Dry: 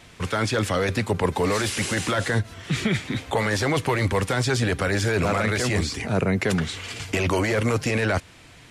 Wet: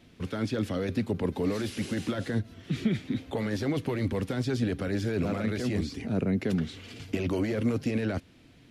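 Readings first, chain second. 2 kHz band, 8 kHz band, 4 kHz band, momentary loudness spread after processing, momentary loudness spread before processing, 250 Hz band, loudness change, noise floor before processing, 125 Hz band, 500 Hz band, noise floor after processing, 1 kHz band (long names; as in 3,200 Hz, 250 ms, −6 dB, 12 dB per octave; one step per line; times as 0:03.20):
−14.0 dB, −16.5 dB, −12.0 dB, 5 LU, 4 LU, −2.0 dB, −6.5 dB, −48 dBFS, −6.5 dB, −7.5 dB, −56 dBFS, −14.5 dB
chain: octave-band graphic EQ 250/1,000/2,000/8,000 Hz +9/−7/−4/−10 dB
level −8.5 dB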